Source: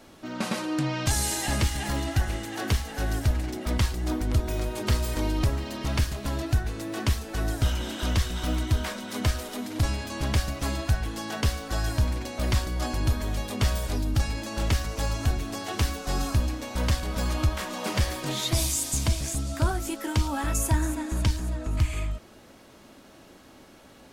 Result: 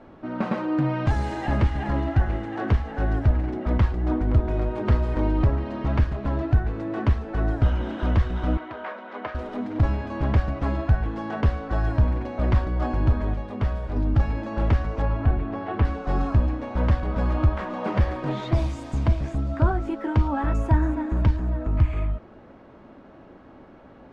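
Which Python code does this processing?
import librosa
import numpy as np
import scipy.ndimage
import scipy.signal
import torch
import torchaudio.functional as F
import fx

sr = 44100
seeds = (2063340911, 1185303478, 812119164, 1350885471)

y = fx.bandpass_edges(x, sr, low_hz=530.0, high_hz=3100.0, at=(8.57, 9.35))
y = fx.lowpass(y, sr, hz=3200.0, slope=12, at=(15.02, 15.85))
y = fx.edit(y, sr, fx.clip_gain(start_s=13.34, length_s=0.62, db=-4.5), tone=tone)
y = scipy.signal.sosfilt(scipy.signal.butter(2, 1400.0, 'lowpass', fs=sr, output='sos'), y)
y = y * librosa.db_to_amplitude(4.5)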